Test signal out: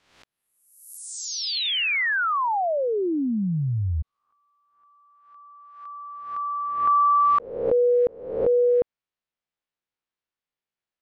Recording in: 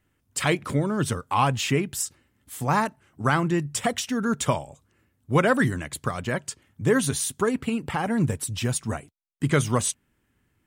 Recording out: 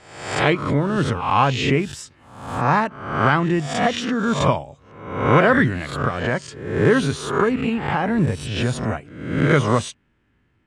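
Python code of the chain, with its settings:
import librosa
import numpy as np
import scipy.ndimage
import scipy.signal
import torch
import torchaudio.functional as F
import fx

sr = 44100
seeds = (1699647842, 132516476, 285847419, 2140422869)

y = fx.spec_swells(x, sr, rise_s=0.64)
y = scipy.signal.sosfilt(scipy.signal.butter(2, 3600.0, 'lowpass', fs=sr, output='sos'), y)
y = fx.pre_swell(y, sr, db_per_s=76.0)
y = y * librosa.db_to_amplitude(3.0)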